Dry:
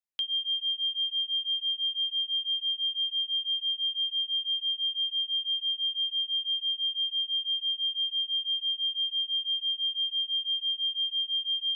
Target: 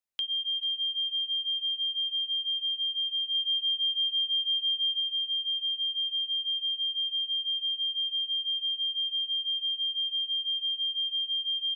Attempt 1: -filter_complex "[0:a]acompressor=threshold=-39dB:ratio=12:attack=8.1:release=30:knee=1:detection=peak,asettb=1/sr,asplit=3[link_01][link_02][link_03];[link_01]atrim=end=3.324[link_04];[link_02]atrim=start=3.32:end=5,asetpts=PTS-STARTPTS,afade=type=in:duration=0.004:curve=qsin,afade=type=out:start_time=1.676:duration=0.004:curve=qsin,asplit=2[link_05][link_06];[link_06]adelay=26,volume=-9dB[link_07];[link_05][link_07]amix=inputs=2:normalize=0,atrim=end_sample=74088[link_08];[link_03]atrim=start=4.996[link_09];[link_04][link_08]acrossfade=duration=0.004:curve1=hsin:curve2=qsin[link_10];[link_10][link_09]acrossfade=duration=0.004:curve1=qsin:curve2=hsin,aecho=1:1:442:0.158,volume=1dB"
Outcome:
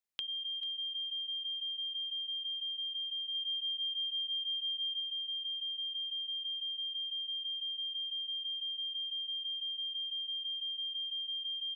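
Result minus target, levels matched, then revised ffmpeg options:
downward compressor: peak gain reduction +8.5 dB
-filter_complex "[0:a]acompressor=threshold=-29.5dB:ratio=12:attack=8.1:release=30:knee=1:detection=peak,asettb=1/sr,asplit=3[link_01][link_02][link_03];[link_01]atrim=end=3.324[link_04];[link_02]atrim=start=3.32:end=5,asetpts=PTS-STARTPTS,afade=type=in:duration=0.004:curve=qsin,afade=type=out:start_time=1.676:duration=0.004:curve=qsin,asplit=2[link_05][link_06];[link_06]adelay=26,volume=-9dB[link_07];[link_05][link_07]amix=inputs=2:normalize=0,atrim=end_sample=74088[link_08];[link_03]atrim=start=4.996[link_09];[link_04][link_08]acrossfade=duration=0.004:curve1=hsin:curve2=qsin[link_10];[link_10][link_09]acrossfade=duration=0.004:curve1=qsin:curve2=hsin,aecho=1:1:442:0.158,volume=1dB"

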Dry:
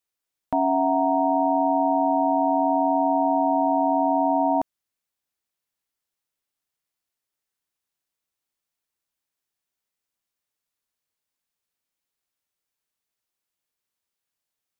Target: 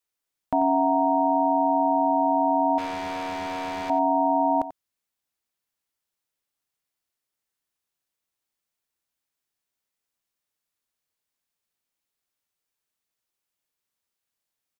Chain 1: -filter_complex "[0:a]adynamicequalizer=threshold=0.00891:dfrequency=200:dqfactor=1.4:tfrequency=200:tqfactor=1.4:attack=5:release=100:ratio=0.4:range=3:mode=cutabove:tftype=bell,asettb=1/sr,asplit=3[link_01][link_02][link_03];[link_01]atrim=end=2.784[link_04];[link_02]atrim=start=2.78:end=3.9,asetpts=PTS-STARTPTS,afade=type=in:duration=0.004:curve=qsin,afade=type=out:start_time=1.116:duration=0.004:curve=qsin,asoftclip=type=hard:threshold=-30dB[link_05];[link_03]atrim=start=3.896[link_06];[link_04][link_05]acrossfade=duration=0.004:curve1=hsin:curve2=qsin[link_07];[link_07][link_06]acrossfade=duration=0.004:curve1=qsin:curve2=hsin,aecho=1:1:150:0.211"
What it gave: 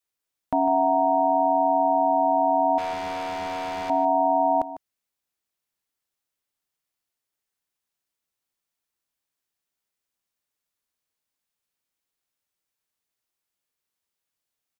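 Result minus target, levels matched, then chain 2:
echo 60 ms late
-filter_complex "[0:a]adynamicequalizer=threshold=0.00891:dfrequency=200:dqfactor=1.4:tfrequency=200:tqfactor=1.4:attack=5:release=100:ratio=0.4:range=3:mode=cutabove:tftype=bell,asettb=1/sr,asplit=3[link_01][link_02][link_03];[link_01]atrim=end=2.784[link_04];[link_02]atrim=start=2.78:end=3.9,asetpts=PTS-STARTPTS,afade=type=in:duration=0.004:curve=qsin,afade=type=out:start_time=1.116:duration=0.004:curve=qsin,asoftclip=type=hard:threshold=-30dB[link_05];[link_03]atrim=start=3.896[link_06];[link_04][link_05]acrossfade=duration=0.004:curve1=hsin:curve2=qsin[link_07];[link_07][link_06]acrossfade=duration=0.004:curve1=qsin:curve2=hsin,aecho=1:1:90:0.211"

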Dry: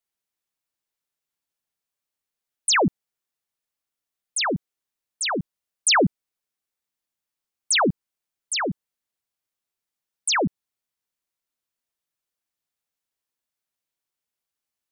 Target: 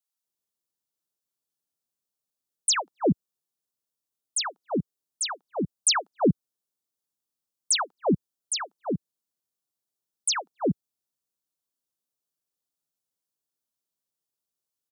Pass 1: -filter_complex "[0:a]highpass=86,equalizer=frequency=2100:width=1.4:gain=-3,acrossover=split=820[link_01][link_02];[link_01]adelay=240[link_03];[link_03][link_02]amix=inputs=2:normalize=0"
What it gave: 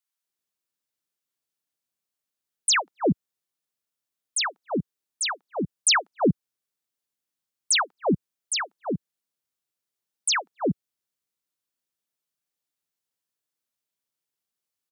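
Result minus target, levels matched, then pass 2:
2,000 Hz band +6.0 dB
-filter_complex "[0:a]highpass=86,equalizer=frequency=2100:width=1.4:gain=-14,acrossover=split=820[link_01][link_02];[link_01]adelay=240[link_03];[link_03][link_02]amix=inputs=2:normalize=0"

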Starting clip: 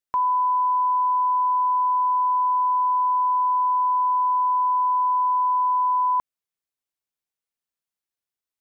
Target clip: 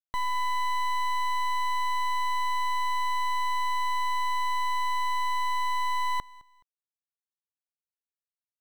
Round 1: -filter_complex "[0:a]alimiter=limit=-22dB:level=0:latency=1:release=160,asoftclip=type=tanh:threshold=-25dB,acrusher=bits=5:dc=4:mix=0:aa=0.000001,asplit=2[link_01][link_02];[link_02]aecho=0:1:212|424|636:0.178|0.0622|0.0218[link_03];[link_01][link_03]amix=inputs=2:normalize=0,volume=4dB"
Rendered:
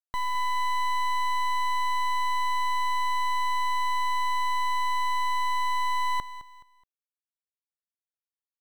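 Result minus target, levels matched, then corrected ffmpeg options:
echo-to-direct +8.5 dB
-filter_complex "[0:a]alimiter=limit=-22dB:level=0:latency=1:release=160,asoftclip=type=tanh:threshold=-25dB,acrusher=bits=5:dc=4:mix=0:aa=0.000001,asplit=2[link_01][link_02];[link_02]aecho=0:1:212|424:0.0668|0.0234[link_03];[link_01][link_03]amix=inputs=2:normalize=0,volume=4dB"

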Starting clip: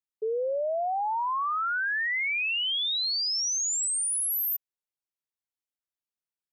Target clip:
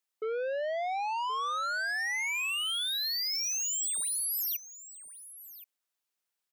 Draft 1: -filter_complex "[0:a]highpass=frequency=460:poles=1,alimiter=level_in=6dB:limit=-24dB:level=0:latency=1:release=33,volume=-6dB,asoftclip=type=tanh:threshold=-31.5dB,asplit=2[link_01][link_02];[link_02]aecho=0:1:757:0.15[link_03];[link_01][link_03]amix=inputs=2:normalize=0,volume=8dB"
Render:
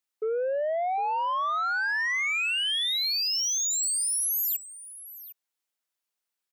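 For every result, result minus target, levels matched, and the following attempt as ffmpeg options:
echo 317 ms early; soft clipping: distortion −9 dB
-filter_complex "[0:a]highpass=frequency=460:poles=1,alimiter=level_in=6dB:limit=-24dB:level=0:latency=1:release=33,volume=-6dB,asoftclip=type=tanh:threshold=-31.5dB,asplit=2[link_01][link_02];[link_02]aecho=0:1:1074:0.15[link_03];[link_01][link_03]amix=inputs=2:normalize=0,volume=8dB"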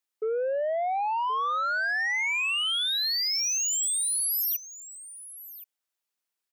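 soft clipping: distortion −9 dB
-filter_complex "[0:a]highpass=frequency=460:poles=1,alimiter=level_in=6dB:limit=-24dB:level=0:latency=1:release=33,volume=-6dB,asoftclip=type=tanh:threshold=-39dB,asplit=2[link_01][link_02];[link_02]aecho=0:1:1074:0.15[link_03];[link_01][link_03]amix=inputs=2:normalize=0,volume=8dB"

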